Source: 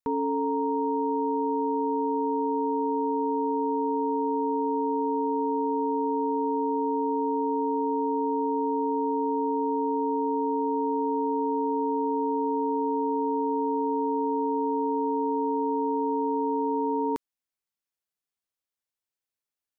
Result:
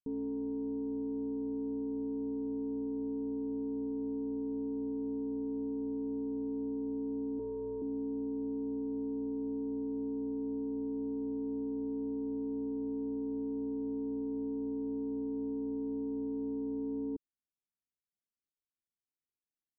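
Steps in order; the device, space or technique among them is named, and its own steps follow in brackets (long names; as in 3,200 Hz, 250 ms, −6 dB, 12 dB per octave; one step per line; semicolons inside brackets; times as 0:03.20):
overdriven synthesiser ladder filter (soft clipping −27 dBFS, distortion −12 dB; transistor ladder low-pass 410 Hz, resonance 25%)
0:07.39–0:07.82: comb filter 2 ms, depth 95%
level +2.5 dB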